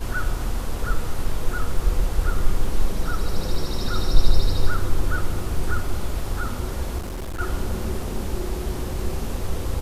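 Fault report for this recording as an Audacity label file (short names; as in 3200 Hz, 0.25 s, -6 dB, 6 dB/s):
6.980000	7.410000	clipped -27 dBFS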